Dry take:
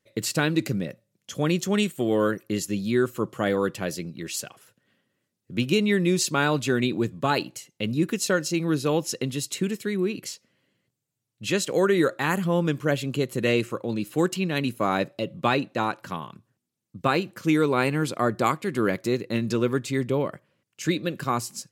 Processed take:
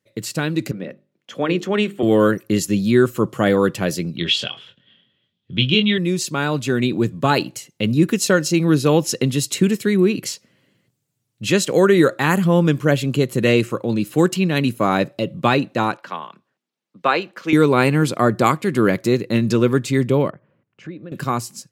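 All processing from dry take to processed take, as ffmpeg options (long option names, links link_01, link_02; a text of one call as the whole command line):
ffmpeg -i in.wav -filter_complex "[0:a]asettb=1/sr,asplit=3[link_01][link_02][link_03];[link_01]atrim=end=0.714[link_04];[link_02]atrim=start=0.71:end=2.03,asetpts=PTS-STARTPTS,afade=type=in:duration=0.004:curve=qsin,afade=type=out:start_time=1.316:duration=0.004:curve=qsin,acrossover=split=230 3600:gain=0.158 1 0.126[link_05][link_06][link_07];[link_05][link_06][link_07]amix=inputs=3:normalize=0,bandreject=frequency=50:width_type=h:width=6,bandreject=frequency=100:width_type=h:width=6,bandreject=frequency=150:width_type=h:width=6,bandreject=frequency=200:width_type=h:width=6,bandreject=frequency=250:width_type=h:width=6,bandreject=frequency=300:width_type=h:width=6,bandreject=frequency=350:width_type=h:width=6,bandreject=frequency=400:width_type=h:width=6,bandreject=frequency=450:width_type=h:width=6[link_08];[link_03]atrim=start=2.026[link_09];[link_04][link_08]acrossfade=duration=0.004:curve1=hsin:curve2=qsin[link_10];[link_10][link_09]acrossfade=duration=0.004:curve1=qsin:curve2=hsin,asettb=1/sr,asplit=3[link_11][link_12][link_13];[link_11]atrim=end=4.174[link_14];[link_12]atrim=start=4.17:end=5.98,asetpts=PTS-STARTPTS,afade=type=in:duration=0.004:curve=qsin,afade=type=out:start_time=1.806:duration=0.004:curve=qsin,asubboost=boost=3.5:cutoff=190,lowpass=frequency=3300:width_type=q:width=12,asplit=2[link_15][link_16];[link_16]adelay=23,volume=-6dB[link_17];[link_15][link_17]amix=inputs=2:normalize=0,atrim=end_sample=79821[link_18];[link_13]atrim=start=5.976[link_19];[link_14][link_18]acrossfade=duration=0.004:curve1=hsin:curve2=qsin[link_20];[link_20][link_19]acrossfade=duration=0.004:curve1=qsin:curve2=hsin,asettb=1/sr,asplit=3[link_21][link_22][link_23];[link_21]atrim=end=15.974[link_24];[link_22]atrim=start=15.97:end=17.53,asetpts=PTS-STARTPTS,afade=type=in:duration=0.004:curve=qsin,afade=type=out:start_time=1.556:duration=0.004:curve=qsin,highpass=frequency=160:width=0.5412,highpass=frequency=160:width=1.3066,acrossover=split=440 4800:gain=0.2 1 0.158[link_25][link_26][link_27];[link_25][link_26][link_27]amix=inputs=3:normalize=0[link_28];[link_23]atrim=start=17.526[link_29];[link_24][link_28]acrossfade=duration=0.004:curve1=hsin:curve2=qsin[link_30];[link_30][link_29]acrossfade=duration=0.004:curve1=qsin:curve2=hsin,asettb=1/sr,asplit=3[link_31][link_32][link_33];[link_31]atrim=end=20.304[link_34];[link_32]atrim=start=20.3:end=21.12,asetpts=PTS-STARTPTS,afade=type=in:duration=0.004:curve=qsin,afade=type=out:start_time=0.816:duration=0.004:curve=qsin,lowpass=1600,acompressor=threshold=-51dB:ratio=2:attack=3.2:release=140:knee=1:detection=peak[link_35];[link_33]atrim=start=21.116[link_36];[link_34][link_35]acrossfade=duration=0.004:curve1=hsin:curve2=qsin[link_37];[link_37][link_36]acrossfade=duration=0.004:curve1=qsin:curve2=hsin,lowshelf=frequency=170:gain=7,dynaudnorm=framelen=270:gausssize=7:maxgain=11.5dB,highpass=96,volume=-1dB" out.wav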